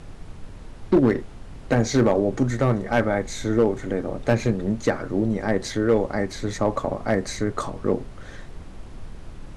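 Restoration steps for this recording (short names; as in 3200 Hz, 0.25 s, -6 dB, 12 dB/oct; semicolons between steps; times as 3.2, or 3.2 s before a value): clip repair -10.5 dBFS; noise print and reduce 28 dB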